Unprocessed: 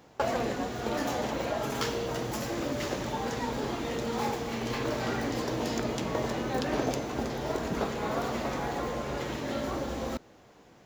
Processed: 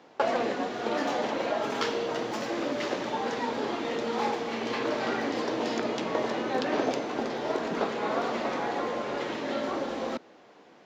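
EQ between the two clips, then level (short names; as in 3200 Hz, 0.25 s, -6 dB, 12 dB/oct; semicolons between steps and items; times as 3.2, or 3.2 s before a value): three-band isolator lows -23 dB, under 200 Hz, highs -21 dB, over 5700 Hz; +3.0 dB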